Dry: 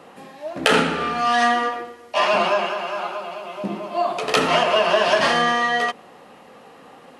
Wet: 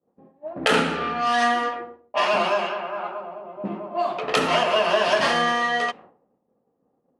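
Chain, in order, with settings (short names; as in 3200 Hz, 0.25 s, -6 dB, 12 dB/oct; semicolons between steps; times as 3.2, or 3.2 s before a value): low-pass opened by the level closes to 400 Hz, open at -15.5 dBFS; expander -38 dBFS; gain -2.5 dB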